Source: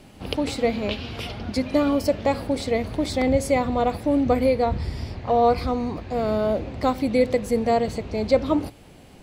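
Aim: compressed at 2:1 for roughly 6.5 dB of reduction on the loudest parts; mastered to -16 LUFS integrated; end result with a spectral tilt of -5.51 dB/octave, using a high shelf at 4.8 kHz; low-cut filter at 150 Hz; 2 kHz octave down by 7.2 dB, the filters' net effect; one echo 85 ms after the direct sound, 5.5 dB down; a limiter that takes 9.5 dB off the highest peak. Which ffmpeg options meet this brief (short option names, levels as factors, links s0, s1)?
-af "highpass=150,equalizer=f=2000:t=o:g=-7,highshelf=f=4800:g=-8,acompressor=threshold=0.0562:ratio=2,alimiter=limit=0.075:level=0:latency=1,aecho=1:1:85:0.531,volume=5.96"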